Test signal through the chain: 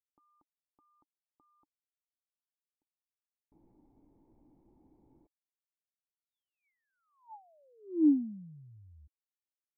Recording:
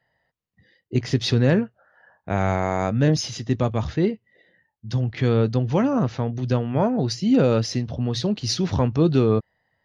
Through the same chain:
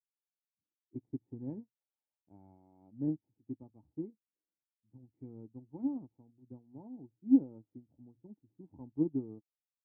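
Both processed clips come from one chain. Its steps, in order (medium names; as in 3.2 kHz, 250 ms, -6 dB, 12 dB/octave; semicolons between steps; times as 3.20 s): dynamic bell 460 Hz, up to -3 dB, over -30 dBFS, Q 2.3; cascade formant filter u; upward expansion 2.5:1, over -37 dBFS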